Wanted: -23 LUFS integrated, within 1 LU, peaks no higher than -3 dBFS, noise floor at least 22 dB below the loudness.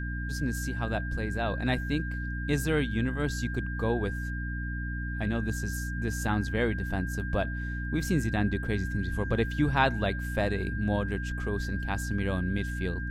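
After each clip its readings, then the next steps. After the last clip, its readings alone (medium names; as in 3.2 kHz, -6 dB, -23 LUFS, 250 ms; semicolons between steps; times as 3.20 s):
hum 60 Hz; highest harmonic 300 Hz; hum level -31 dBFS; steady tone 1.6 kHz; tone level -38 dBFS; loudness -30.5 LUFS; peak level -10.0 dBFS; loudness target -23.0 LUFS
-> de-hum 60 Hz, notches 5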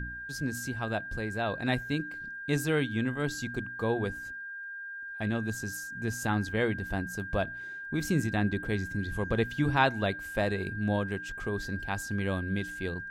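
hum not found; steady tone 1.6 kHz; tone level -38 dBFS
-> band-stop 1.6 kHz, Q 30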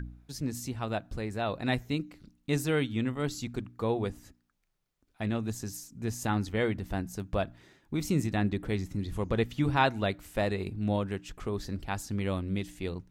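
steady tone not found; loudness -32.5 LUFS; peak level -11.5 dBFS; loudness target -23.0 LUFS
-> trim +9.5 dB; peak limiter -3 dBFS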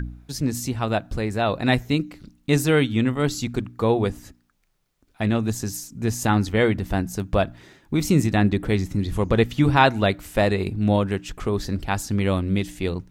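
loudness -23.0 LUFS; peak level -3.0 dBFS; noise floor -65 dBFS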